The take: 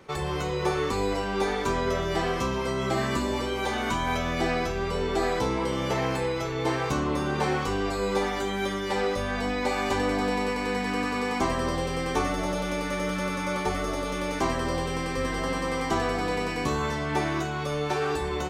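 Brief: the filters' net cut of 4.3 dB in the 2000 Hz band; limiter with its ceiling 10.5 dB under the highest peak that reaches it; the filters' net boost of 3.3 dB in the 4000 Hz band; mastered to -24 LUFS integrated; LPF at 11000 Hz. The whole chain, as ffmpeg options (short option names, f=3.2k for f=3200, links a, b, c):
-af "lowpass=11k,equalizer=f=2k:t=o:g=-7,equalizer=f=4k:t=o:g=6.5,volume=8.5dB,alimiter=limit=-15dB:level=0:latency=1"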